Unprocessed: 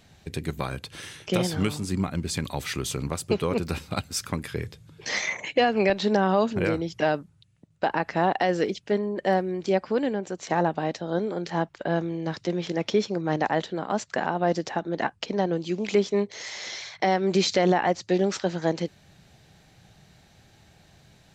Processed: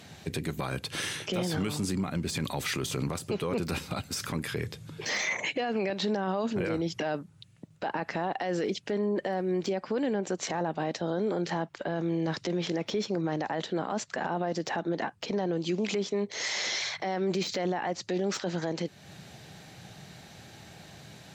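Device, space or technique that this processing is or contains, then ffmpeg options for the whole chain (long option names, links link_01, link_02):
podcast mastering chain: -af "highpass=110,deesser=0.7,acompressor=threshold=-37dB:ratio=2,alimiter=level_in=5.5dB:limit=-24dB:level=0:latency=1:release=12,volume=-5.5dB,volume=8.5dB" -ar 44100 -c:a libmp3lame -b:a 96k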